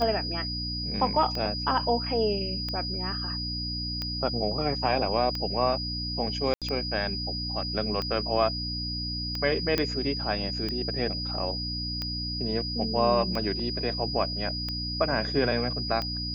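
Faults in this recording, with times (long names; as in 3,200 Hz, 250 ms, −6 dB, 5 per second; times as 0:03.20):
mains hum 60 Hz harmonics 5 −35 dBFS
scratch tick 45 rpm −18 dBFS
whistle 4,900 Hz −32 dBFS
0:06.54–0:06.62: drop-out 77 ms
0:09.78: click −11 dBFS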